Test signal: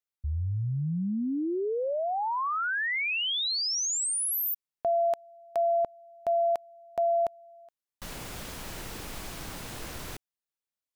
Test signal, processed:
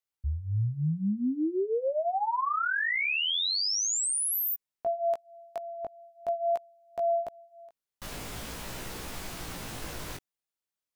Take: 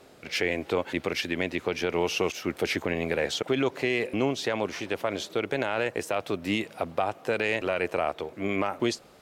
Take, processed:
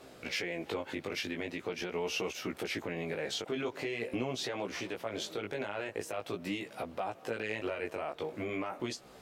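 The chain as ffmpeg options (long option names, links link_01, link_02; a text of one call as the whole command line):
ffmpeg -i in.wav -af "alimiter=level_in=1.5dB:limit=-24dB:level=0:latency=1:release=270,volume=-1.5dB,flanger=delay=15.5:depth=4.4:speed=0.44,volume=3.5dB" out.wav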